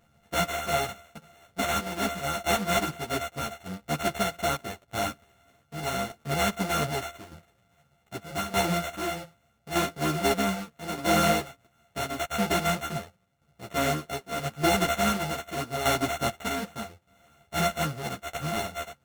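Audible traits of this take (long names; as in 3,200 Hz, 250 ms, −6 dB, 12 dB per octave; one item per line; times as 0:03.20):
a buzz of ramps at a fixed pitch in blocks of 64 samples
tremolo saw down 0.82 Hz, depth 60%
aliases and images of a low sample rate 4,900 Hz, jitter 0%
a shimmering, thickened sound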